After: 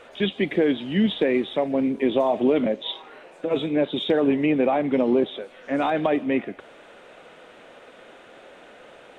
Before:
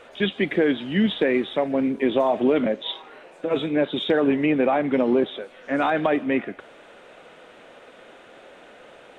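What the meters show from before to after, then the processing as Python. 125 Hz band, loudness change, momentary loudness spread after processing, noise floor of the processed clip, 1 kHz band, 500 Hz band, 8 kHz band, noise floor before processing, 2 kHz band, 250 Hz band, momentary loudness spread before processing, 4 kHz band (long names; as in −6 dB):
0.0 dB, −0.5 dB, 8 LU, −49 dBFS, −1.5 dB, −0.5 dB, can't be measured, −48 dBFS, −3.5 dB, 0.0 dB, 8 LU, −0.5 dB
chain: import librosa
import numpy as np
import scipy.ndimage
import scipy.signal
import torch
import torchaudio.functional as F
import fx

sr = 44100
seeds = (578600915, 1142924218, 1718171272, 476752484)

y = fx.dynamic_eq(x, sr, hz=1500.0, q=1.7, threshold_db=-43.0, ratio=4.0, max_db=-6)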